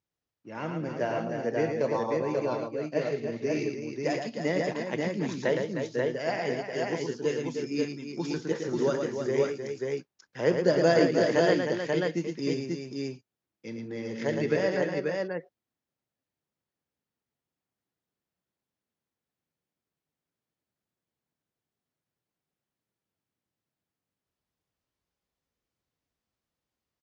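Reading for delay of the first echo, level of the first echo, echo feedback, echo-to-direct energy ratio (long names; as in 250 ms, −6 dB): 64 ms, −19.0 dB, repeats not evenly spaced, 0.0 dB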